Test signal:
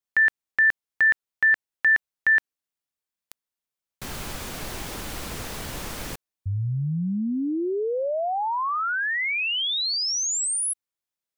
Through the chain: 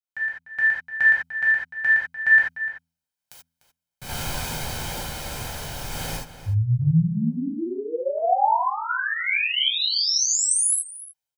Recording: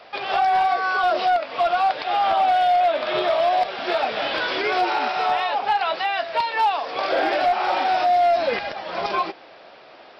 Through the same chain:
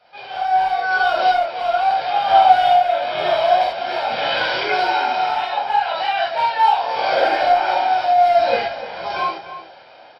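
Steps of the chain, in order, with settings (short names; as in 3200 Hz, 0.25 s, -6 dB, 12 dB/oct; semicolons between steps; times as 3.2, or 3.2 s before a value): comb 1.3 ms, depth 49%; de-hum 83.43 Hz, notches 3; AGC gain up to 7 dB; random-step tremolo 2.2 Hz; outdoor echo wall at 51 m, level -12 dB; non-linear reverb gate 0.11 s flat, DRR -6 dB; gain -9.5 dB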